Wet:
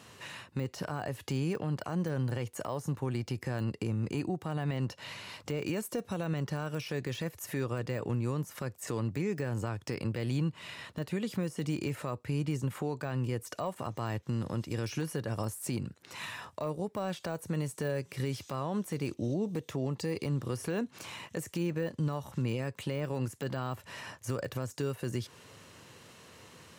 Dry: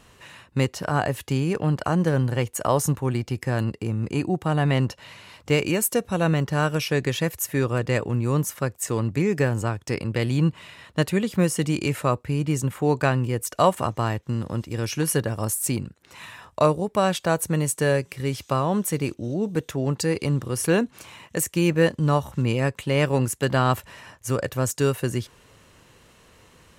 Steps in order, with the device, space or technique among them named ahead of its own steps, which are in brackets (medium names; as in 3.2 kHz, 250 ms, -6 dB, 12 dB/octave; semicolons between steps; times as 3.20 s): broadcast voice chain (high-pass 87 Hz 24 dB/octave; de-esser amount 85%; compression 4:1, threshold -29 dBFS, peak gain reduction 12.5 dB; peaking EQ 4.9 kHz +3 dB 0.76 oct; peak limiter -23.5 dBFS, peak gain reduction 9.5 dB); 19.13–20.25 s: band-stop 1.5 kHz, Q 5.6